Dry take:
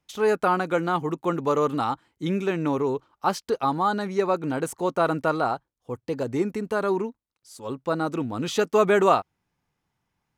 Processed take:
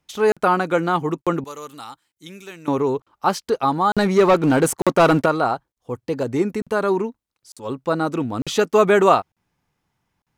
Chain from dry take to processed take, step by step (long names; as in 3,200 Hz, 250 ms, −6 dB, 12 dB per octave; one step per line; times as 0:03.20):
0:01.44–0:02.68: first-order pre-emphasis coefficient 0.9
0:03.96–0:05.26: leveller curve on the samples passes 2
regular buffer underruns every 0.90 s, samples 2,048, zero, from 0:00.32
level +4.5 dB